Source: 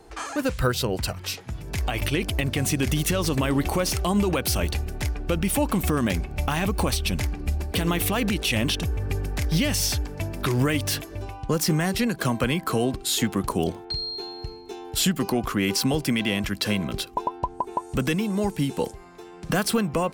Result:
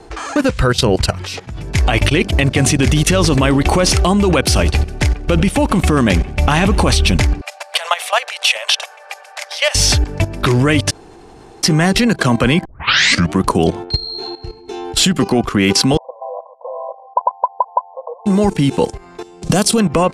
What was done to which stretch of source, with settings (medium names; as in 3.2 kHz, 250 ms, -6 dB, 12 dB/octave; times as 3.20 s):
2.17–2.67 s: hum notches 50/100/150/200/250/300/350/400 Hz
4.41–6.90 s: modulated delay 90 ms, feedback 57%, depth 58 cents, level -22 dB
7.41–9.75 s: steep high-pass 550 Hz 72 dB/octave
10.91–11.63 s: room tone
12.65 s: tape start 0.76 s
14.00–14.68 s: detune thickener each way 31 cents
15.97–18.26 s: brick-wall FIR band-pass 480–1100 Hz
19.23–19.80 s: FFT filter 700 Hz 0 dB, 1.6 kHz -9 dB, 3.2 kHz 0 dB, 7.4 kHz +8 dB
whole clip: Bessel low-pass 7.8 kHz, order 6; level held to a coarse grid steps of 14 dB; loudness maximiser +17 dB; trim -1 dB